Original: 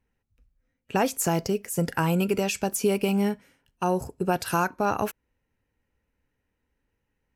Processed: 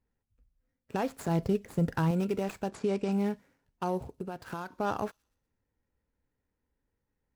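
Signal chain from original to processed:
running median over 15 samples
brickwall limiter −16.5 dBFS, peak gain reduction 5 dB
0:01.28–0:02.11: low-shelf EQ 190 Hz +10 dB
0:02.69–0:03.12: low-pass filter 8,400 Hz 24 dB per octave
0:03.97–0:04.72: downward compressor 5 to 1, threshold −30 dBFS, peak gain reduction 8 dB
delay with a high-pass on its return 121 ms, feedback 42%, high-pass 3,900 Hz, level −22 dB
level −4.5 dB

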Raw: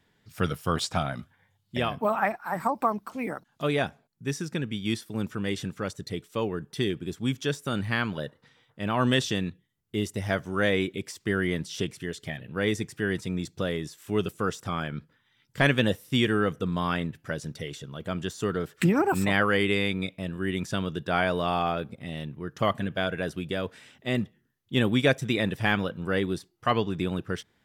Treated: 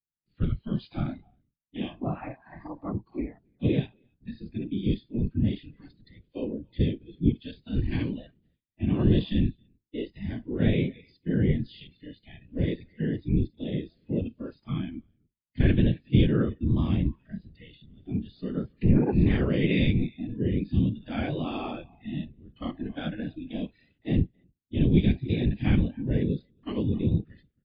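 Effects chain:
sub-octave generator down 1 octave, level +1 dB
noise gate with hold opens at −48 dBFS
parametric band 2,400 Hz +4.5 dB 0.87 octaves
on a send: single-tap delay 273 ms −23 dB
on the sum: harmonic and percussive parts rebalanced percussive −17 dB
drawn EQ curve 300 Hz 0 dB, 460 Hz −9 dB, 970 Hz −16 dB, 3,500 Hz −8 dB
random phases in short frames
noise reduction from a noise print of the clip's start 16 dB
level +5 dB
MP3 40 kbit/s 11,025 Hz

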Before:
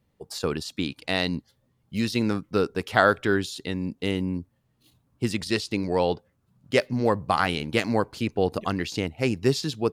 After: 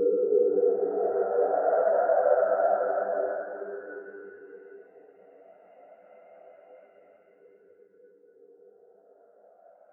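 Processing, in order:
every frequency bin delayed by itself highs early, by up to 105 ms
flat-topped bell 4,100 Hz −14.5 dB 1 octave
output level in coarse steps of 21 dB
band-pass filter sweep 230 Hz → 1,700 Hz, 0:01.79–0:04.21
on a send: feedback echo with a low-pass in the loop 950 ms, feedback 77%, low-pass 3,400 Hz, level −19 dB
on the sum: extreme stretch with random phases 4.1×, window 1.00 s, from 0:02.47
every bin expanded away from the loudest bin 1.5 to 1
level +7.5 dB

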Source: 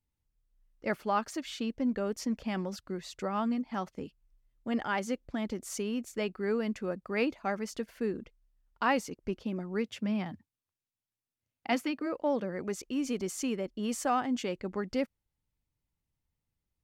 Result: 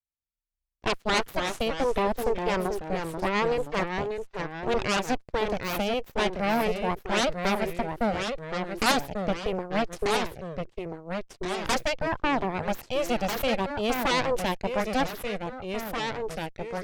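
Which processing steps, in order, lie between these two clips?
harmonic generator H 3 −9 dB, 8 −10 dB, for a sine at −15.5 dBFS
delay with pitch and tempo change per echo 161 ms, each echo −2 semitones, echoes 2, each echo −6 dB
level +4.5 dB

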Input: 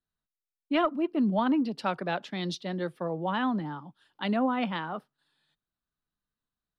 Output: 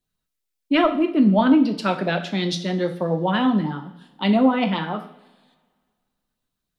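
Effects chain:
auto-filter notch sine 7.4 Hz 750–1,700 Hz
coupled-rooms reverb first 0.53 s, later 1.9 s, from −20 dB, DRR 5.5 dB
level +9 dB

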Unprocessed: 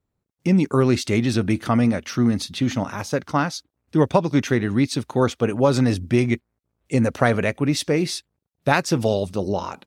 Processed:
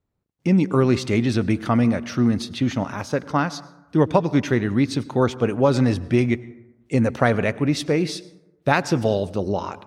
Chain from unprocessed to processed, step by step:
high-shelf EQ 6,800 Hz −9.5 dB
dense smooth reverb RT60 1 s, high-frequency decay 0.4×, pre-delay 85 ms, DRR 18.5 dB

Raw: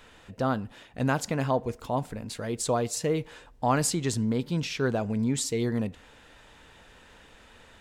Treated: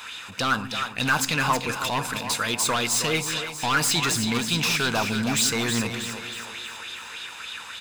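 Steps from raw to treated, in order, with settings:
high-pass filter 85 Hz
tilt shelving filter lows −10 dB
comb filter 0.8 ms, depth 38%
in parallel at +3 dB: brickwall limiter −20 dBFS, peak gain reduction 14.5 dB
on the sum: hard clipping −22 dBFS, distortion −6 dB
echo with a time of its own for lows and highs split 340 Hz, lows 168 ms, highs 319 ms, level −8 dB
on a send at −17.5 dB: convolution reverb RT60 1.1 s, pre-delay 3 ms
on the sum: auto-filter bell 3.4 Hz 820–3,900 Hz +9 dB

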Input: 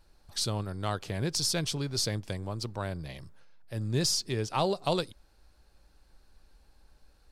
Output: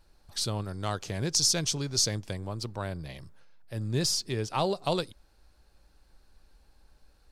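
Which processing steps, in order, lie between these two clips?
0:00.64–0:02.24: parametric band 6,300 Hz +9 dB 0.57 octaves

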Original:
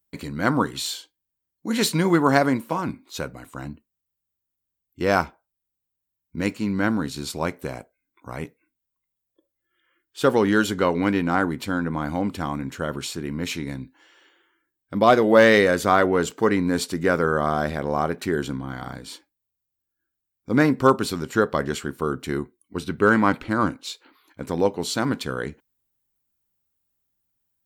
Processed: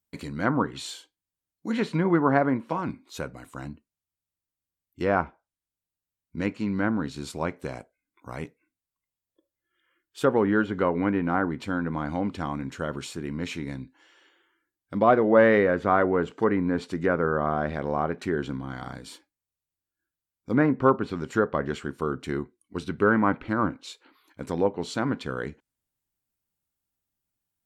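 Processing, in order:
dynamic equaliser 4,700 Hz, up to −6 dB, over −42 dBFS, Q 1.1
treble cut that deepens with the level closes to 2,000 Hz, closed at −17 dBFS
level −3 dB

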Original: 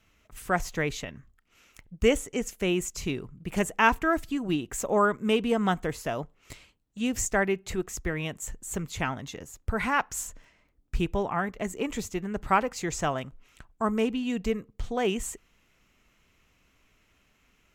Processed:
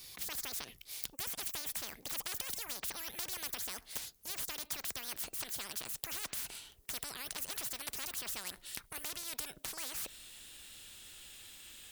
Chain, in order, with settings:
gliding playback speed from 172% → 126%
first-order pre-emphasis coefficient 0.9
every bin compressed towards the loudest bin 10 to 1
level +1.5 dB

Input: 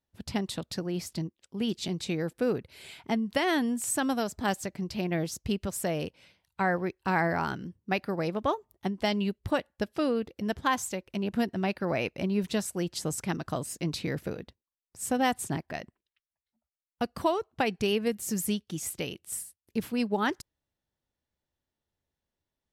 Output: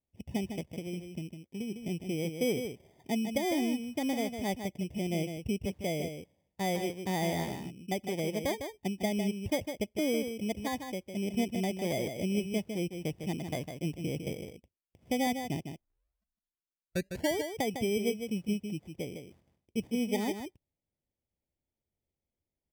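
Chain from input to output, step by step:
inverse Chebyshev low-pass filter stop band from 1,600 Hz, stop band 40 dB
0:00.64–0:01.80: downward compressor, threshold −32 dBFS, peak gain reduction 6.5 dB
decimation without filtering 16×
0:15.69: tape start 1.70 s
single-tap delay 154 ms −7.5 dB
level −2.5 dB

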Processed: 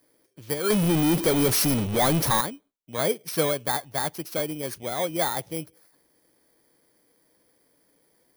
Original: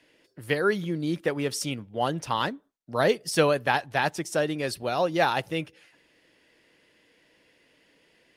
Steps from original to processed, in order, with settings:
samples in bit-reversed order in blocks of 16 samples
0:00.70–0:02.41: power curve on the samples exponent 0.35
level −2.5 dB

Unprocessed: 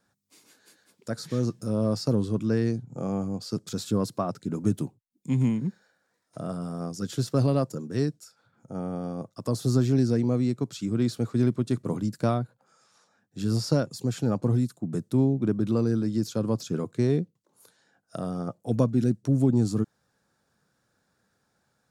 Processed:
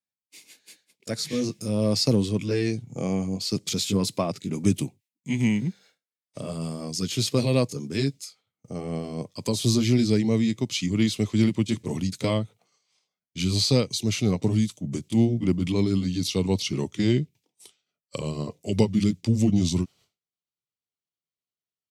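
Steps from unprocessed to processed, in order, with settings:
pitch glide at a constant tempo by −3.5 semitones starting unshifted
high-pass filter 81 Hz 6 dB per octave
downward expander −53 dBFS
high shelf with overshoot 1,800 Hz +7 dB, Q 3
level +4 dB

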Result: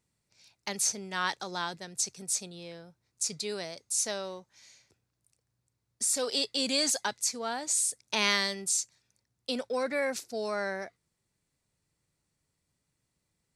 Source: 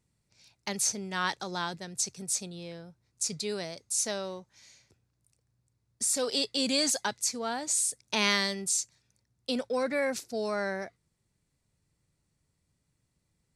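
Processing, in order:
low-shelf EQ 230 Hz −7.5 dB

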